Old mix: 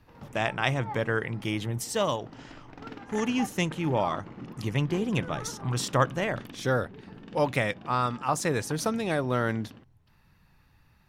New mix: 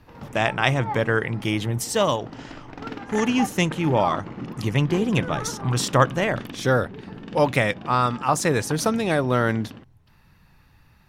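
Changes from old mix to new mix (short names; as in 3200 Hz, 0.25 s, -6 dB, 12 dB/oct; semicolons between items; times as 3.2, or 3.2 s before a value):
speech +6.0 dB; background +8.0 dB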